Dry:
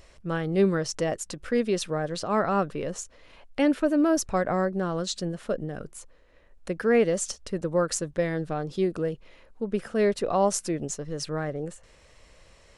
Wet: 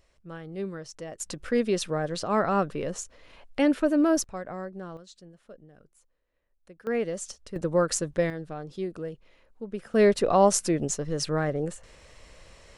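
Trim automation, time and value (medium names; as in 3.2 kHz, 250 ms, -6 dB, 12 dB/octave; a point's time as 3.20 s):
-12 dB
from 1.20 s 0 dB
from 4.24 s -11 dB
from 4.97 s -19.5 dB
from 6.87 s -7 dB
from 7.56 s +1 dB
from 8.30 s -7 dB
from 9.94 s +3.5 dB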